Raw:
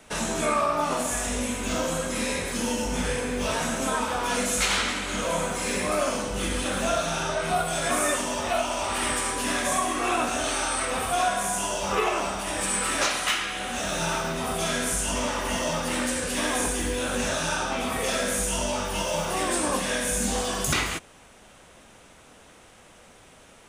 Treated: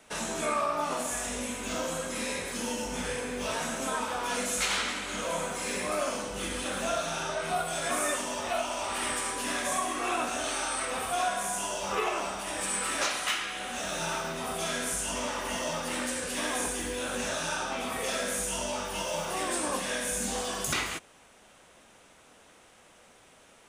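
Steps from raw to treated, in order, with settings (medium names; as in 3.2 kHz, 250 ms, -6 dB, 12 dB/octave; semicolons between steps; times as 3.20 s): bass shelf 170 Hz -8 dB; trim -4.5 dB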